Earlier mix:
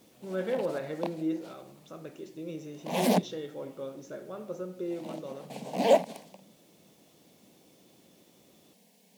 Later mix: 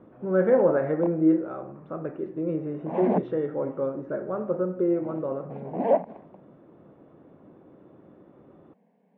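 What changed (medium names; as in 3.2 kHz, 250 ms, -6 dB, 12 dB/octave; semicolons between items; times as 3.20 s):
speech +11.0 dB; master: add low-pass 1.6 kHz 24 dB/octave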